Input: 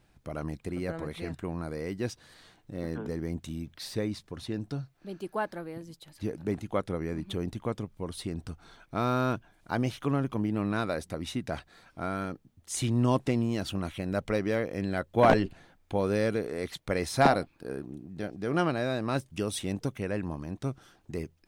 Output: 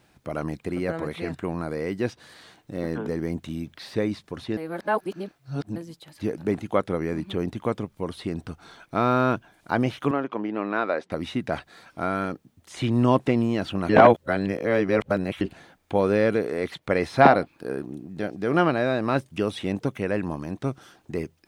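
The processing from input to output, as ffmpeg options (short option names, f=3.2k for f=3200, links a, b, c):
-filter_complex "[0:a]asettb=1/sr,asplit=3[a][b][c];[a]atrim=end=10.114[d];[b]atrim=start=10.11:end=11.12,asetpts=PTS-STARTPTS,afade=t=in:d=0.004:c=qsin,afade=t=out:st=1.006:d=0.004:c=qsin,highpass=330,lowpass=2.8k[e];[c]atrim=start=11.116[f];[d][e]acrossfade=d=0.004:c1=hsin:c2=qsin[g];[g][f]acrossfade=d=0.004:c1=qsin:c2=hsin,asplit=5[h][i][j][k][l];[h]atrim=end=4.572[m];[i]atrim=start=4.568:end=5.762,asetpts=PTS-STARTPTS,areverse[n];[j]atrim=start=5.758:end=13.892[o];[k]atrim=start=13.888:end=15.412,asetpts=PTS-STARTPTS,areverse[p];[l]atrim=start=15.408[q];[m][n]acrossfade=d=0.004:c1=hsin:c2=hsin[r];[r][o]acrossfade=d=0.004:c1=hsin:c2=hsin[s];[s][p]acrossfade=d=0.004:c1=hsin:c2=hsin[t];[t][q]acrossfade=d=0.004:c1=hsin:c2=hsin,highpass=f=170:p=1,acrossover=split=3400[u][v];[v]acompressor=threshold=-58dB:ratio=4:attack=1:release=60[w];[u][w]amix=inputs=2:normalize=0,volume=7.5dB"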